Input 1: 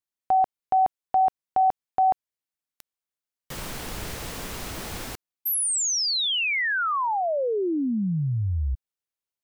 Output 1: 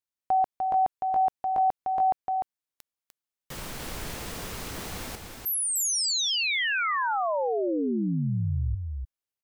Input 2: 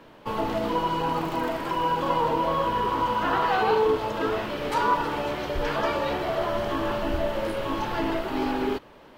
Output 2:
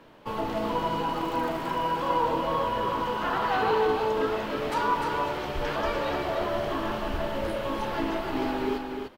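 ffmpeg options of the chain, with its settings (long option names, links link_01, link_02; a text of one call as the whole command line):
ffmpeg -i in.wav -af "aecho=1:1:299:0.562,volume=-3dB" out.wav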